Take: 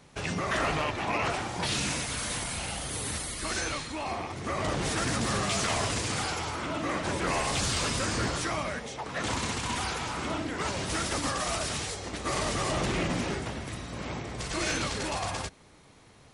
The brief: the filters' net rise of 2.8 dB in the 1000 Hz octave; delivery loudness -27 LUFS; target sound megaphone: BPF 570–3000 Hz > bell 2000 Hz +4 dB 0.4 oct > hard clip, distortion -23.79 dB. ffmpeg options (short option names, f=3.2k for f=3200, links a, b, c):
-af "highpass=570,lowpass=3k,equalizer=f=1k:t=o:g=4,equalizer=f=2k:t=o:w=0.4:g=4,asoftclip=type=hard:threshold=-22.5dB,volume=5dB"